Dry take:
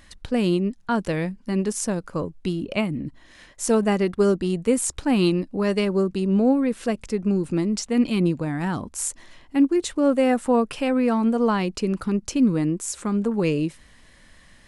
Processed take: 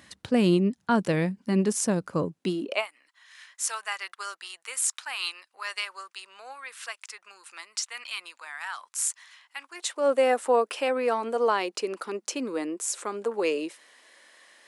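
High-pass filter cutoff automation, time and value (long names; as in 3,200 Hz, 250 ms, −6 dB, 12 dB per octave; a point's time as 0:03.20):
high-pass filter 24 dB per octave
0:02.16 97 Hz
0:02.69 310 Hz
0:02.90 1,100 Hz
0:09.62 1,100 Hz
0:10.12 390 Hz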